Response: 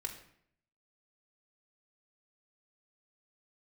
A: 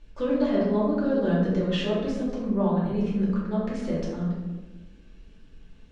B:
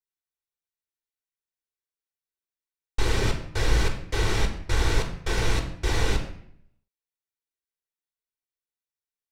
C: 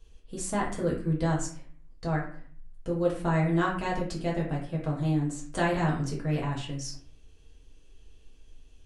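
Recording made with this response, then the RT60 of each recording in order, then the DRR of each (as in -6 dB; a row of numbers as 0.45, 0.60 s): B; 1.2, 0.65, 0.50 s; -7.5, 0.5, -4.5 dB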